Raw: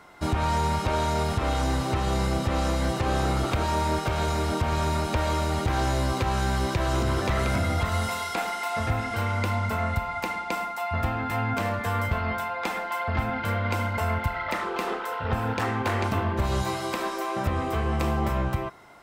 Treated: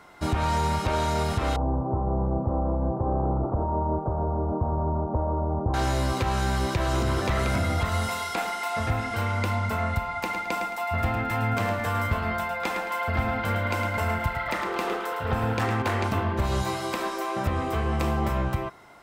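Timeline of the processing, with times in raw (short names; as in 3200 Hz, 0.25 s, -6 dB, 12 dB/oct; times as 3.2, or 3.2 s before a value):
1.56–5.74 steep low-pass 1000 Hz
10.19–15.82 feedback echo 0.109 s, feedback 38%, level -8 dB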